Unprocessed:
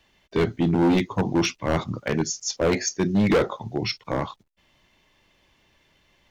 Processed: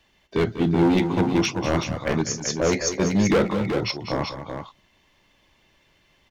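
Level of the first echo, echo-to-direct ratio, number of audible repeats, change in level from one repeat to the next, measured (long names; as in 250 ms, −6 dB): −12.5 dB, −5.0 dB, 2, +5.5 dB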